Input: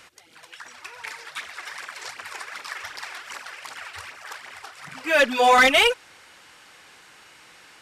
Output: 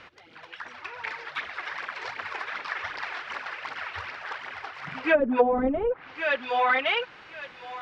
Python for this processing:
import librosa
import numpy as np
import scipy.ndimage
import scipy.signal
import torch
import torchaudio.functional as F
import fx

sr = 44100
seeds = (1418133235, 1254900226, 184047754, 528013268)

y = fx.air_absorb(x, sr, metres=280.0)
y = fx.echo_thinned(y, sr, ms=1114, feedback_pct=23, hz=740.0, wet_db=-8.0)
y = fx.env_lowpass_down(y, sr, base_hz=340.0, full_db=-16.0)
y = y * 10.0 ** (4.5 / 20.0)